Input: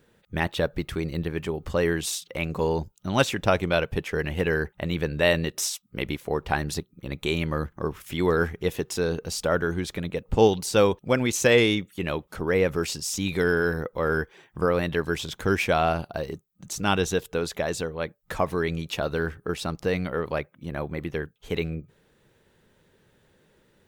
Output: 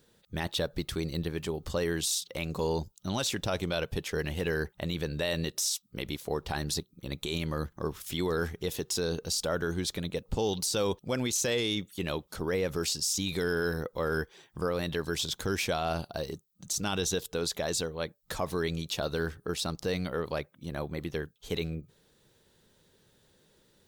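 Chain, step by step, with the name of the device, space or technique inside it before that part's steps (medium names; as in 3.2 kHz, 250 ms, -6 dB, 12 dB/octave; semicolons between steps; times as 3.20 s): over-bright horn tweeter (resonant high shelf 3.1 kHz +7 dB, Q 1.5; peak limiter -16 dBFS, peak gain reduction 10 dB); trim -4 dB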